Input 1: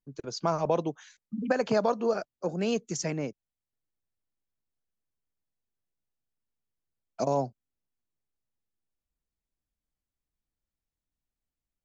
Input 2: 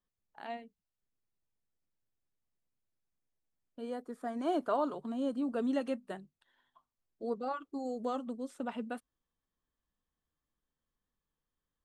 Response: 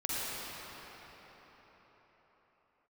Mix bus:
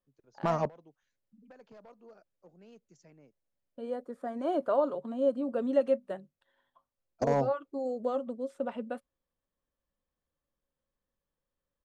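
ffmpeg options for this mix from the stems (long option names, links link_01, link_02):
-filter_complex "[0:a]asoftclip=type=hard:threshold=-21dB,volume=0.5dB[link_01];[1:a]equalizer=frequency=550:width_type=o:width=0.23:gain=13,volume=0dB,asplit=2[link_02][link_03];[link_03]apad=whole_len=526828[link_04];[link_01][link_04]sidechaingate=range=-27dB:threshold=-48dB:ratio=16:detection=peak[link_05];[link_05][link_02]amix=inputs=2:normalize=0,highshelf=frequency=3800:gain=-8"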